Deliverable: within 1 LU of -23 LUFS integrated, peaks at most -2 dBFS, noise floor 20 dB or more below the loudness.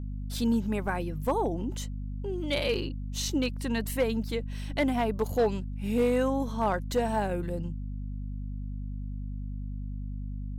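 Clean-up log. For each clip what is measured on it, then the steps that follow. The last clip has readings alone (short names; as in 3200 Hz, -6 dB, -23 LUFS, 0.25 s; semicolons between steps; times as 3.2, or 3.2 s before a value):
clipped 0.3%; flat tops at -18.5 dBFS; hum 50 Hz; harmonics up to 250 Hz; hum level -33 dBFS; loudness -31.0 LUFS; peak -18.5 dBFS; loudness target -23.0 LUFS
-> clip repair -18.5 dBFS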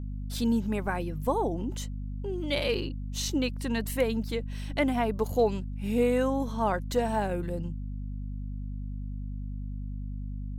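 clipped 0.0%; hum 50 Hz; harmonics up to 250 Hz; hum level -32 dBFS
-> de-hum 50 Hz, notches 5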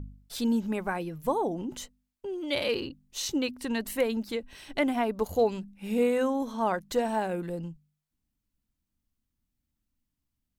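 hum none; loudness -30.0 LUFS; peak -13.5 dBFS; loudness target -23.0 LUFS
-> gain +7 dB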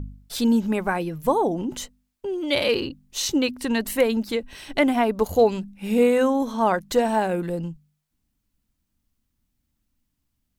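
loudness -23.0 LUFS; peak -6.5 dBFS; noise floor -77 dBFS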